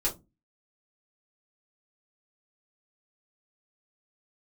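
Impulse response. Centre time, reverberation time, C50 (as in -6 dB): 17 ms, no single decay rate, 14.0 dB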